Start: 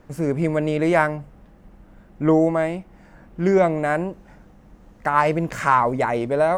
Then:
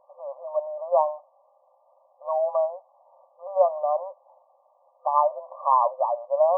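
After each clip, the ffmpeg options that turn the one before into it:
-af "afftfilt=real='re*between(b*sr/4096,510,1200)':imag='im*between(b*sr/4096,510,1200)':win_size=4096:overlap=0.75,aemphasis=mode=reproduction:type=bsi,volume=-1.5dB"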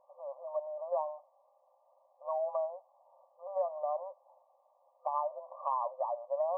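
-af "acompressor=threshold=-24dB:ratio=3,volume=-7dB"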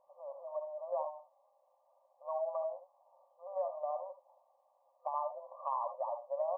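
-af "aecho=1:1:66|77:0.251|0.282,volume=-3.5dB"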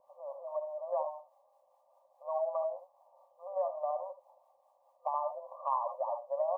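-filter_complex "[0:a]acrossover=split=620[a][b];[a]aeval=exprs='val(0)*(1-0.5/2+0.5/2*cos(2*PI*4.8*n/s))':c=same[c];[b]aeval=exprs='val(0)*(1-0.5/2-0.5/2*cos(2*PI*4.8*n/s))':c=same[d];[c][d]amix=inputs=2:normalize=0,volume=5.5dB"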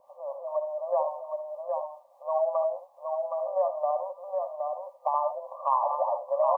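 -af "aecho=1:1:768:0.596,volume=7dB"

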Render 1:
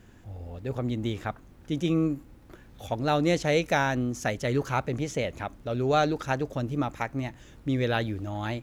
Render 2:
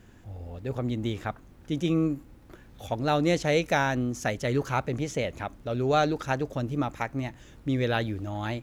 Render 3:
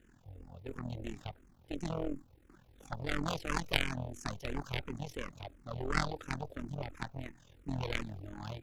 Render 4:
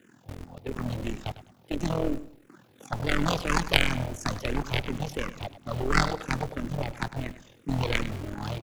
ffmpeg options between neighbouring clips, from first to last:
-af anull
-filter_complex "[0:a]tremolo=f=42:d=0.824,aeval=exprs='0.282*(cos(1*acos(clip(val(0)/0.282,-1,1)))-cos(1*PI/2))+0.126*(cos(3*acos(clip(val(0)/0.282,-1,1)))-cos(3*PI/2))+0.02*(cos(6*acos(clip(val(0)/0.282,-1,1)))-cos(6*PI/2))':c=same,asplit=2[a][b];[b]afreqshift=-2.9[c];[a][c]amix=inputs=2:normalize=1,volume=5dB"
-filter_complex "[0:a]acrossover=split=120|1100|2100[a][b][c][d];[a]acrusher=bits=7:mix=0:aa=0.000001[e];[e][b][c][d]amix=inputs=4:normalize=0,aecho=1:1:102|204|306:0.2|0.0559|0.0156,volume=9dB"

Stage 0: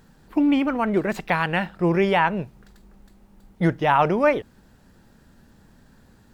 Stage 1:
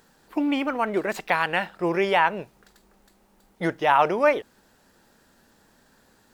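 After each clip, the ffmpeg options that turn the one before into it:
-af "bass=f=250:g=-14,treble=f=4k:g=3"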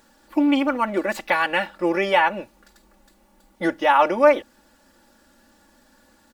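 -af "aecho=1:1:3.5:0.91"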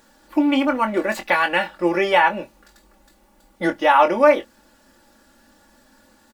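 -filter_complex "[0:a]asplit=2[a][b];[b]adelay=23,volume=-8dB[c];[a][c]amix=inputs=2:normalize=0,volume=1.5dB"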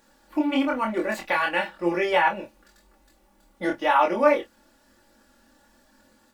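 -af "flanger=delay=22.5:depth=4.1:speed=0.98,volume=-2dB"

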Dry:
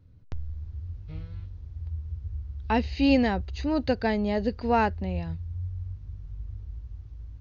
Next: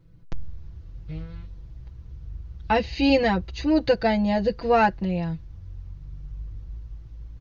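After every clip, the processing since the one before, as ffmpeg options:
-af "aecho=1:1:6:0.96,volume=2dB"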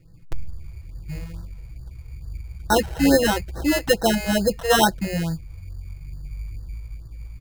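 -af "acrusher=samples=19:mix=1:aa=0.000001,afftfilt=real='re*(1-between(b*sr/1024,210*pow(2700/210,0.5+0.5*sin(2*PI*2.3*pts/sr))/1.41,210*pow(2700/210,0.5+0.5*sin(2*PI*2.3*pts/sr))*1.41))':imag='im*(1-between(b*sr/1024,210*pow(2700/210,0.5+0.5*sin(2*PI*2.3*pts/sr))/1.41,210*pow(2700/210,0.5+0.5*sin(2*PI*2.3*pts/sr))*1.41))':win_size=1024:overlap=0.75,volume=3dB"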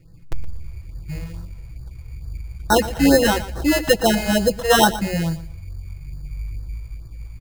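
-af "aecho=1:1:118|236|354:0.178|0.0427|0.0102,volume=2.5dB"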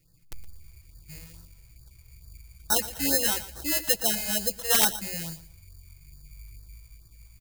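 -af "crystalizer=i=7:c=0,aeval=exprs='(mod(0.15*val(0)+1,2)-1)/0.15':c=same,volume=-17dB"

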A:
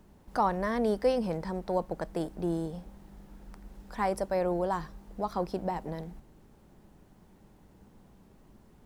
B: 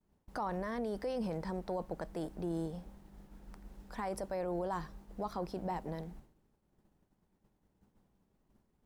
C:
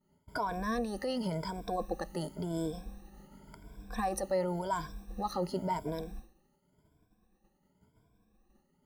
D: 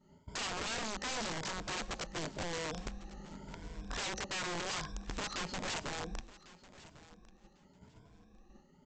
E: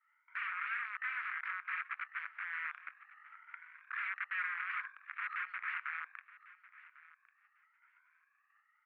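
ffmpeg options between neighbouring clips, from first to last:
-af "agate=range=-33dB:threshold=-47dB:ratio=3:detection=peak,alimiter=level_in=1dB:limit=-24dB:level=0:latency=1:release=12,volume=-1dB,volume=-3.5dB"
-af "afftfilt=real='re*pow(10,20/40*sin(2*PI*(1.7*log(max(b,1)*sr/1024/100)/log(2)-(0.92)*(pts-256)/sr)))':imag='im*pow(10,20/40*sin(2*PI*(1.7*log(max(b,1)*sr/1024/100)/log(2)-(0.92)*(pts-256)/sr)))':win_size=1024:overlap=0.75,adynamicequalizer=threshold=0.00251:dfrequency=2800:dqfactor=0.7:tfrequency=2800:tqfactor=0.7:attack=5:release=100:ratio=0.375:range=3:mode=boostabove:tftype=highshelf"
-af "acompressor=threshold=-58dB:ratio=1.5,aresample=16000,aeval=exprs='(mod(119*val(0)+1,2)-1)/119':c=same,aresample=44100,aecho=1:1:1099|2198:0.112|0.0202,volume=8.5dB"
-af "aeval=exprs='0.0447*(cos(1*acos(clip(val(0)/0.0447,-1,1)))-cos(1*PI/2))+0.00398*(cos(6*acos(clip(val(0)/0.0447,-1,1)))-cos(6*PI/2))':c=same,asuperpass=centerf=1700:order=8:qfactor=1.5,volume=6dB"

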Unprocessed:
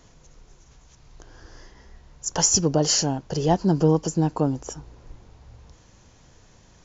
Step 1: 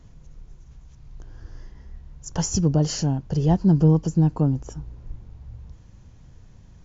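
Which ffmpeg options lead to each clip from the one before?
-af "bass=f=250:g=14,treble=f=4k:g=-4,volume=-6dB"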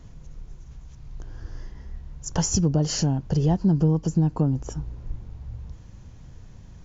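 -af "acompressor=threshold=-23dB:ratio=2.5,volume=3.5dB"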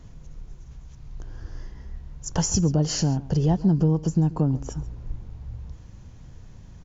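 -af "aecho=1:1:136:0.112"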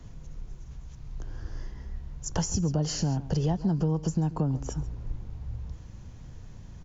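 -filter_complex "[0:a]acrossover=split=190|480[a][b][c];[a]acompressor=threshold=-27dB:ratio=4[d];[b]acompressor=threshold=-35dB:ratio=4[e];[c]acompressor=threshold=-32dB:ratio=4[f];[d][e][f]amix=inputs=3:normalize=0"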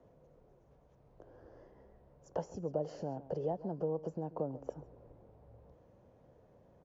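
-af "bandpass=f=550:t=q:w=3.1:csg=0,volume=2.5dB"

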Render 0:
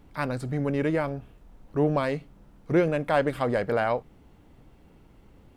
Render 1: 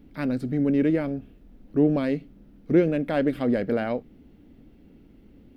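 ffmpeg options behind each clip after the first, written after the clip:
-af "equalizer=f=125:t=o:w=1:g=-4,equalizer=f=250:t=o:w=1:g=10,equalizer=f=1k:t=o:w=1:g=-11,equalizer=f=8k:t=o:w=1:g=-10"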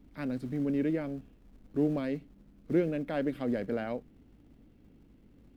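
-filter_complex "[0:a]aeval=exprs='val(0)+0.002*(sin(2*PI*50*n/s)+sin(2*PI*2*50*n/s)/2+sin(2*PI*3*50*n/s)/3+sin(2*PI*4*50*n/s)/4+sin(2*PI*5*50*n/s)/5)':c=same,acrossover=split=130[a][b];[a]acrusher=bits=3:mode=log:mix=0:aa=0.000001[c];[c][b]amix=inputs=2:normalize=0,volume=-8dB"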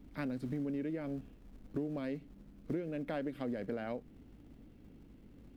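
-af "acompressor=threshold=-36dB:ratio=10,volume=2dB"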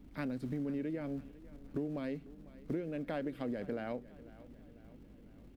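-af "aecho=1:1:498|996|1494|1992:0.112|0.0583|0.0303|0.0158"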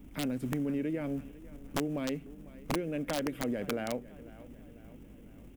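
-af "aexciter=amount=1.4:drive=1.9:freq=2.3k,aeval=exprs='(mod(25.1*val(0)+1,2)-1)/25.1':c=same,volume=4.5dB"

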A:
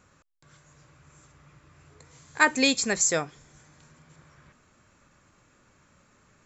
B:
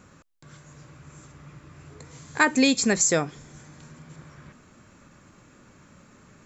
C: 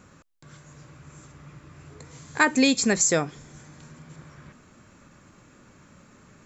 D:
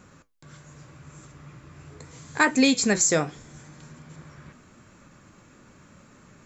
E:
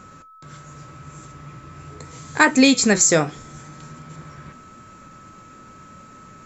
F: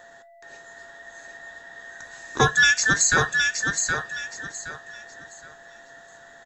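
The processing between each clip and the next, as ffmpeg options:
-af "equalizer=f=220:t=o:w=1.9:g=6.5,acompressor=threshold=-26dB:ratio=2,volume=5.5dB"
-af anull
-af "flanger=delay=5.2:depth=9.2:regen=-72:speed=0.8:shape=triangular,acontrast=74,volume=-2dB"
-af "aeval=exprs='val(0)+0.00316*sin(2*PI*1300*n/s)':c=same,volume=5.5dB"
-filter_complex "[0:a]afftfilt=real='real(if(between(b,1,1012),(2*floor((b-1)/92)+1)*92-b,b),0)':imag='imag(if(between(b,1,1012),(2*floor((b-1)/92)+1)*92-b,b),0)*if(between(b,1,1012),-1,1)':win_size=2048:overlap=0.75,asplit=2[a][b];[b]aecho=0:1:769|1538|2307|3076:0.562|0.157|0.0441|0.0123[c];[a][c]amix=inputs=2:normalize=0,volume=-4dB"

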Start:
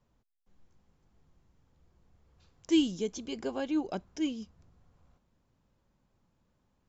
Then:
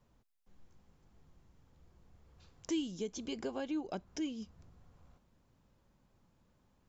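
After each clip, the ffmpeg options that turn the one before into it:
-af "acompressor=threshold=-41dB:ratio=2.5,volume=2.5dB"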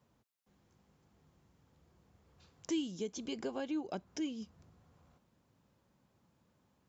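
-af "highpass=90"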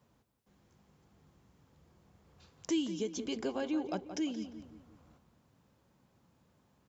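-filter_complex "[0:a]asplit=2[a][b];[b]adelay=175,lowpass=f=2.7k:p=1,volume=-10dB,asplit=2[c][d];[d]adelay=175,lowpass=f=2.7k:p=1,volume=0.44,asplit=2[e][f];[f]adelay=175,lowpass=f=2.7k:p=1,volume=0.44,asplit=2[g][h];[h]adelay=175,lowpass=f=2.7k:p=1,volume=0.44,asplit=2[i][j];[j]adelay=175,lowpass=f=2.7k:p=1,volume=0.44[k];[a][c][e][g][i][k]amix=inputs=6:normalize=0,volume=3dB"

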